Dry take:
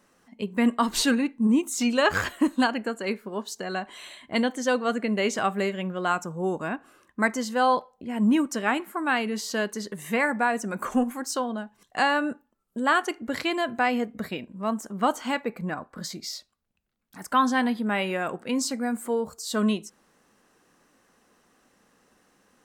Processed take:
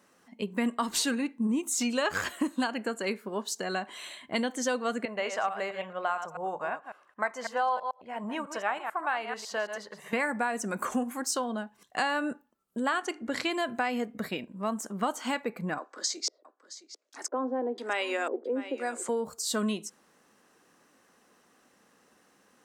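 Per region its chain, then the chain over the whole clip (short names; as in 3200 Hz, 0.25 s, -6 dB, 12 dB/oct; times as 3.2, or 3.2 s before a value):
5.05–10.13 reverse delay 0.11 s, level -9 dB + LPF 1700 Hz 6 dB/oct + resonant low shelf 450 Hz -13 dB, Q 1.5
12.89–13.49 LPF 9300 Hz + notches 50/100/150/200/250/300 Hz
15.78–19.09 LFO low-pass square 1 Hz 450–6500 Hz + steep high-pass 290 Hz 48 dB/oct + echo 0.666 s -16 dB
whole clip: HPF 160 Hz 6 dB/oct; dynamic EQ 7800 Hz, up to +4 dB, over -48 dBFS, Q 0.88; compressor 3:1, threshold -27 dBFS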